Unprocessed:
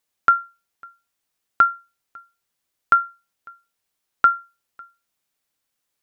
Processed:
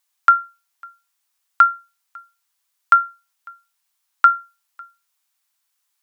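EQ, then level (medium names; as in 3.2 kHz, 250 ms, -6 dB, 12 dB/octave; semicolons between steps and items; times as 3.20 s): resonant high-pass 950 Hz, resonance Q 1.7; treble shelf 2.5 kHz +8.5 dB; -2.5 dB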